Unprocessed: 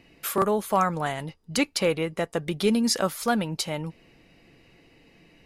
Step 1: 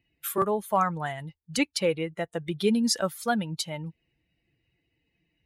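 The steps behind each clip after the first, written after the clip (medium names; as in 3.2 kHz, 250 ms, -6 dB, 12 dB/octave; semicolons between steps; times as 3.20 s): expander on every frequency bin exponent 1.5; high-pass 53 Hz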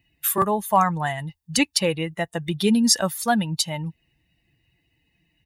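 treble shelf 5.5 kHz +5.5 dB; comb 1.1 ms, depth 41%; trim +5 dB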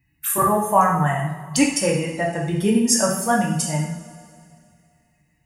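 touch-sensitive phaser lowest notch 550 Hz, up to 4 kHz, full sweep at -25 dBFS; two-slope reverb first 0.65 s, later 2.5 s, from -17 dB, DRR -3 dB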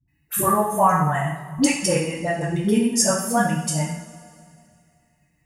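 phase dispersion highs, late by 82 ms, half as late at 450 Hz; trim -1 dB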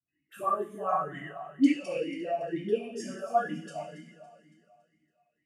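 echo whose repeats swap between lows and highs 140 ms, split 1.3 kHz, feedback 66%, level -10.5 dB; talking filter a-i 2.1 Hz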